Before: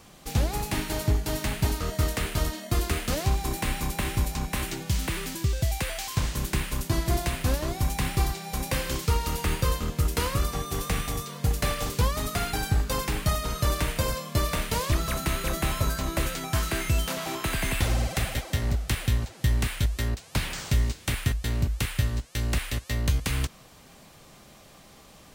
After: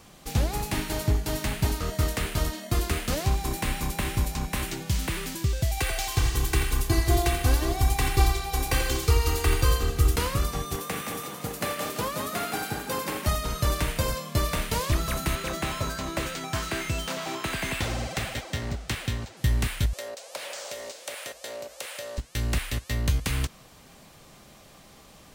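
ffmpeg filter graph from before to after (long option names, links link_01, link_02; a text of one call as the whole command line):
ffmpeg -i in.wav -filter_complex "[0:a]asettb=1/sr,asplit=3[link_01][link_02][link_03];[link_01]atrim=end=5.774[link_04];[link_02]atrim=start=5.77:end=10.16,asetpts=PTS-STARTPTS,afade=type=in:duration=0.004:curve=qsin,afade=type=out:start_time=4.386:duration=0.004:curve=qsin,aecho=1:1:2.6:0.83,atrim=end_sample=193599,aecho=1:1:86|172|258|344|430:0.316|0.142|0.064|0.0288|0.013,atrim=end_sample=193599[link_05];[link_03]atrim=start=10.156[link_06];[link_04][link_05]acrossfade=duration=0.004:curve1=hsin:curve2=qsin[link_07];[link_07][link_06]acrossfade=duration=0.004:curve1=qsin:curve2=hsin,asettb=1/sr,asplit=3[link_08][link_09][link_10];[link_08]atrim=end=10.764[link_11];[link_09]atrim=start=10.76:end=13.27,asetpts=PTS-STARTPTS,afade=type=in:duration=0.004:curve=qsin,afade=type=out:start_time=2.506:duration=0.004:curve=qsin,highpass=210,equalizer=frequency=5000:width_type=o:width=1.8:gain=-4,asplit=6[link_12][link_13][link_14][link_15][link_16][link_17];[link_13]adelay=169,afreqshift=31,volume=-6dB[link_18];[link_14]adelay=338,afreqshift=62,volume=-13.1dB[link_19];[link_15]adelay=507,afreqshift=93,volume=-20.3dB[link_20];[link_16]adelay=676,afreqshift=124,volume=-27.4dB[link_21];[link_17]adelay=845,afreqshift=155,volume=-34.5dB[link_22];[link_12][link_18][link_19][link_20][link_21][link_22]amix=inputs=6:normalize=0,atrim=end_sample=110691[link_23];[link_10]atrim=start=13.266[link_24];[link_11][link_23]acrossfade=duration=0.004:curve1=hsin:curve2=qsin[link_25];[link_25][link_24]acrossfade=duration=0.004:curve1=qsin:curve2=hsin,asettb=1/sr,asplit=3[link_26][link_27][link_28];[link_26]atrim=end=15.354[link_29];[link_27]atrim=start=15.35:end=19.37,asetpts=PTS-STARTPTS,afade=type=in:duration=0.004:curve=qsin,afade=type=out:start_time=4.016:duration=0.004:curve=qsin,highpass=frequency=140:poles=1,equalizer=frequency=12000:width_type=o:width=0.44:gain=-13[link_30];[link_28]atrim=start=19.366[link_31];[link_29][link_30]acrossfade=duration=0.004:curve1=hsin:curve2=qsin[link_32];[link_32][link_31]acrossfade=duration=0.004:curve1=qsin:curve2=hsin,asettb=1/sr,asplit=3[link_33][link_34][link_35];[link_33]atrim=end=19.934[link_36];[link_34]atrim=start=19.93:end=22.18,asetpts=PTS-STARTPTS,afade=type=in:duration=0.004:curve=qsin,afade=type=out:start_time=2.246:duration=0.004:curve=qsin,highpass=frequency=560:width_type=q:width=6.7,equalizer=frequency=6600:width_type=o:width=1.7:gain=5,acompressor=threshold=-36dB:ratio=2.5:attack=3.2:release=140:knee=1:detection=peak[link_37];[link_35]atrim=start=22.176[link_38];[link_36][link_37]acrossfade=duration=0.004:curve1=hsin:curve2=qsin[link_39];[link_39][link_38]acrossfade=duration=0.004:curve1=qsin:curve2=hsin" out.wav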